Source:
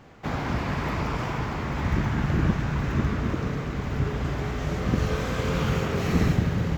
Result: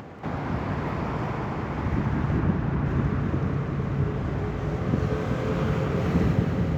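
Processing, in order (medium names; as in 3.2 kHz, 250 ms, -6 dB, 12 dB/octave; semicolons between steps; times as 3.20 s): high-pass 72 Hz; treble shelf 2.2 kHz -12 dB; upward compressor, threshold -31 dBFS; 2.39–2.86 s: distance through air 130 m; on a send: multi-head delay 188 ms, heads first and second, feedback 65%, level -11 dB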